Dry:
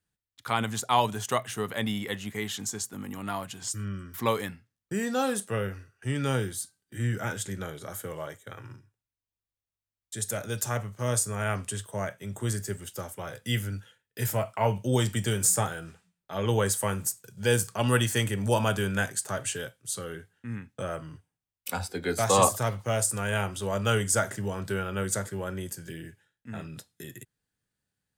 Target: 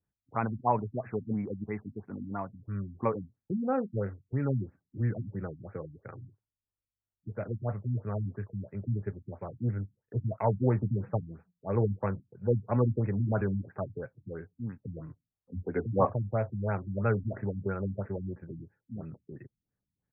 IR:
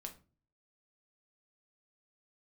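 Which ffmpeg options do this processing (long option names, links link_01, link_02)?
-af "atempo=1.4,equalizer=frequency=3700:width=0.7:gain=-14.5,afftfilt=real='re*lt(b*sr/1024,270*pow(2700/270,0.5+0.5*sin(2*PI*3*pts/sr)))':imag='im*lt(b*sr/1024,270*pow(2700/270,0.5+0.5*sin(2*PI*3*pts/sr)))':win_size=1024:overlap=0.75"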